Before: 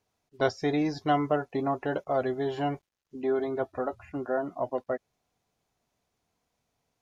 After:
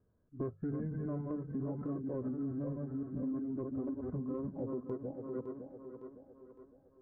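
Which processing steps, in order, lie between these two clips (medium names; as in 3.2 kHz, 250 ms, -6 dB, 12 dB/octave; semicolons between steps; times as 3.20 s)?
chunks repeated in reverse 303 ms, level -6 dB; steep low-pass 2.1 kHz 96 dB/octave; bass shelf 450 Hz +3 dB; hum notches 50/100/150 Hz; formant shift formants -5 st; transient shaper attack -5 dB, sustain +1 dB; peaking EQ 850 Hz -14.5 dB 1.7 oct; band-stop 1.4 kHz, Q 12; thinning echo 559 ms, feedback 48%, high-pass 190 Hz, level -13 dB; compression 12:1, threshold -43 dBFS, peak gain reduction 18.5 dB; trim +8 dB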